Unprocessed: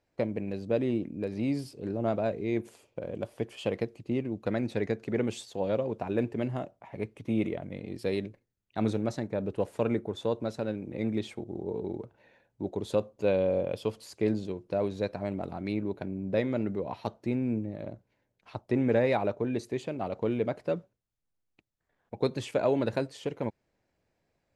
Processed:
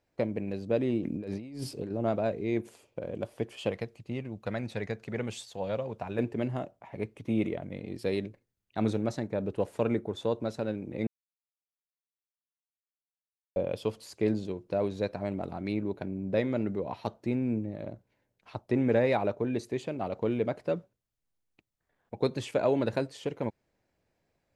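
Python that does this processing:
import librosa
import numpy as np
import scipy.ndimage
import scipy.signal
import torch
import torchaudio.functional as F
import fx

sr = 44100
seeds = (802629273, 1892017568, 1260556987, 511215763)

y = fx.over_compress(x, sr, threshold_db=-39.0, ratio=-1.0, at=(1.01, 1.9), fade=0.02)
y = fx.peak_eq(y, sr, hz=320.0, db=-9.0, octaves=1.2, at=(3.71, 6.19))
y = fx.edit(y, sr, fx.silence(start_s=11.07, length_s=2.49), tone=tone)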